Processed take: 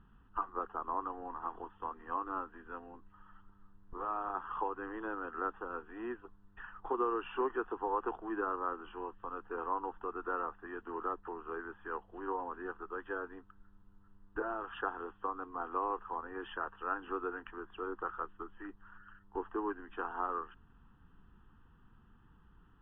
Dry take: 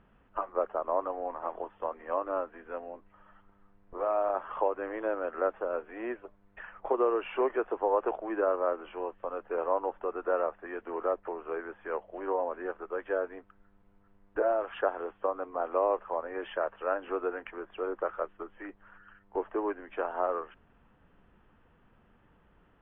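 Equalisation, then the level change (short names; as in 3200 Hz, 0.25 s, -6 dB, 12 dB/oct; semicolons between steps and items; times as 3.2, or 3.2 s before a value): air absorption 71 m; low shelf 140 Hz +4.5 dB; fixed phaser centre 2200 Hz, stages 6; 0.0 dB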